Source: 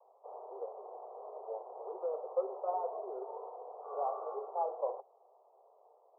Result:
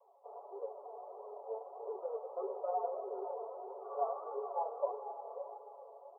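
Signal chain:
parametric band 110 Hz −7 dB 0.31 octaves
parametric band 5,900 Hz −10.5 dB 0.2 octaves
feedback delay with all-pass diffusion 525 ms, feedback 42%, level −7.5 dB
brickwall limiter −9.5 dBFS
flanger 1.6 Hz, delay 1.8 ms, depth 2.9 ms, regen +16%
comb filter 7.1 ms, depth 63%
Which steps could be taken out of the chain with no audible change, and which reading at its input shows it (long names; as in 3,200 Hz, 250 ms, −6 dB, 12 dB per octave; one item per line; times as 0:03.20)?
parametric band 110 Hz: nothing at its input below 340 Hz
parametric band 5,900 Hz: nothing at its input above 1,300 Hz
brickwall limiter −9.5 dBFS: peak of its input −22.0 dBFS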